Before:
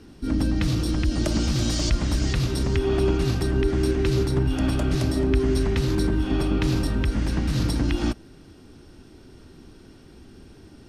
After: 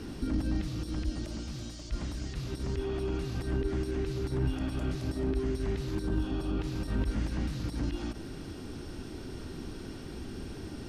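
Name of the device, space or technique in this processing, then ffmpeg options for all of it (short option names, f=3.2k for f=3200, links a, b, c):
de-esser from a sidechain: -filter_complex "[0:a]asplit=2[a][b];[b]highpass=f=4.9k:p=1,apad=whole_len=479992[c];[a][c]sidechaincompress=threshold=-57dB:ratio=16:attack=2.2:release=26,asettb=1/sr,asplit=3[d][e][f];[d]atrim=end=6.034[g];[e]atrim=start=6.03:end=6.59,asetpts=PTS-STARTPTS,afade=t=in:d=0.004:c=qsin,afade=t=out:st=0.556:d=0.004:c=qsin,equalizer=f=2.1k:t=o:w=0.35:g=-9[h];[f]atrim=start=6.586[i];[g][h]acrossfade=d=0.004:c1=hsin:c2=qsin[j];[j][i]acrossfade=d=0.004:c1=qsin:c2=hsin,volume=6.5dB"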